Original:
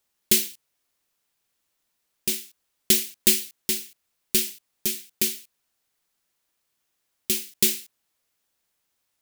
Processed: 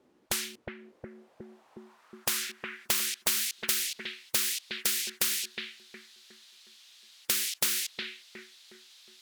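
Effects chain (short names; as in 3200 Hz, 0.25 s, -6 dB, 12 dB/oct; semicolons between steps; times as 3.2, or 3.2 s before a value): band-pass sweep 300 Hz -> 3800 Hz, 0.62–3.37; analogue delay 0.363 s, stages 4096, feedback 39%, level -12 dB; spectral compressor 10:1; gain +2.5 dB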